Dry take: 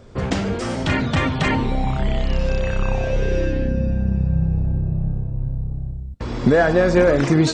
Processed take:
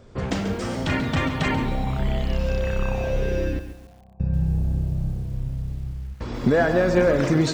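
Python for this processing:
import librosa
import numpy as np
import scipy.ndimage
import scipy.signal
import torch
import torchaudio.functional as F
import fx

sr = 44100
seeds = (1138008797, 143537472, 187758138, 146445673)

y = fx.formant_cascade(x, sr, vowel='a', at=(3.59, 4.2))
y = fx.echo_crushed(y, sr, ms=137, feedback_pct=35, bits=7, wet_db=-10.0)
y = y * librosa.db_to_amplitude(-4.0)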